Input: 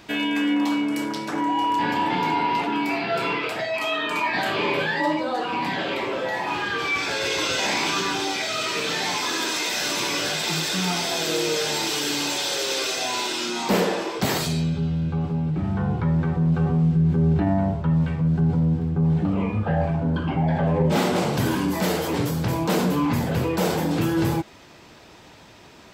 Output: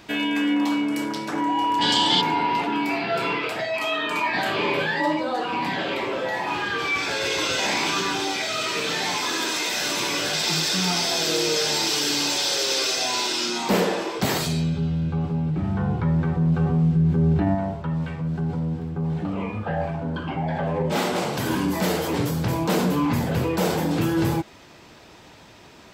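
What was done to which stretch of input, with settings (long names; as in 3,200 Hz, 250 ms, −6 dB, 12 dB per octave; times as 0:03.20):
0:01.82–0:02.21: gain on a spectral selection 2,900–9,500 Hz +18 dB
0:10.33–0:13.58: parametric band 5,100 Hz +5.5 dB 0.66 octaves
0:17.55–0:21.50: low-shelf EQ 300 Hz −7.5 dB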